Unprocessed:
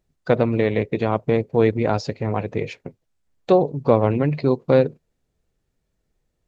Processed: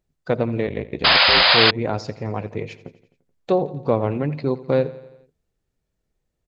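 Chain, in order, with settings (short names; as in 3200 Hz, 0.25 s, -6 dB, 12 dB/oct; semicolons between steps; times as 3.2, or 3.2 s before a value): feedback echo 86 ms, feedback 58%, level -17.5 dB; 0.65–1.47 ring modulator 20 Hz -> 74 Hz; 1.04–1.71 painted sound noise 500–5100 Hz -11 dBFS; gain -3.5 dB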